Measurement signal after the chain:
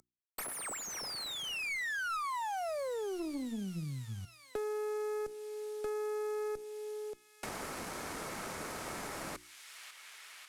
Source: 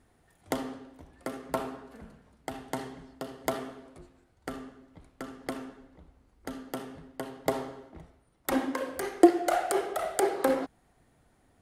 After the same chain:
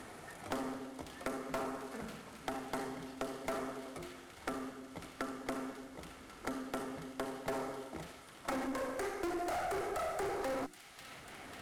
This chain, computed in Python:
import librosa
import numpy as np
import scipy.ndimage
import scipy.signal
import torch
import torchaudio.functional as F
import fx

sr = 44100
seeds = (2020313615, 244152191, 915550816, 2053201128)

p1 = fx.cvsd(x, sr, bps=64000)
p2 = fx.low_shelf(p1, sr, hz=130.0, db=-12.0)
p3 = fx.hum_notches(p2, sr, base_hz=60, count=6)
p4 = fx.small_body(p3, sr, hz=(1300.0, 2200.0), ring_ms=45, db=7)
p5 = fx.tube_stage(p4, sr, drive_db=36.0, bias=0.5)
p6 = p5 + fx.echo_wet_highpass(p5, sr, ms=545, feedback_pct=51, hz=2300.0, wet_db=-14.0, dry=0)
p7 = fx.dynamic_eq(p6, sr, hz=3200.0, q=1.5, threshold_db=-59.0, ratio=4.0, max_db=-6)
p8 = fx.band_squash(p7, sr, depth_pct=70)
y = F.gain(torch.from_numpy(p8), 3.0).numpy()